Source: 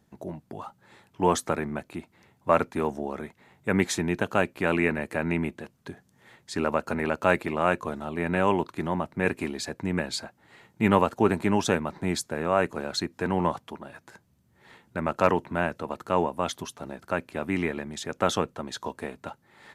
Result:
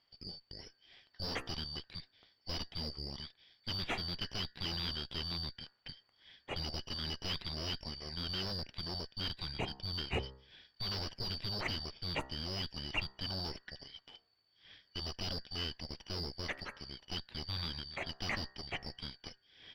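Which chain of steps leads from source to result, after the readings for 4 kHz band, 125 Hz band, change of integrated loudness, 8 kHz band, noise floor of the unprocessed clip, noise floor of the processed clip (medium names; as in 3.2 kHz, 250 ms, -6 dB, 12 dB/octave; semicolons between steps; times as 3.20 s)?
+1.5 dB, -10.0 dB, -12.0 dB, -17.0 dB, -66 dBFS, -75 dBFS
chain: four frequency bands reordered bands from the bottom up 4321; de-hum 66.11 Hz, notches 29; dynamic bell 1.3 kHz, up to -4 dB, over -46 dBFS, Q 1.4; valve stage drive 27 dB, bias 0.4; distance through air 410 m; trim +6 dB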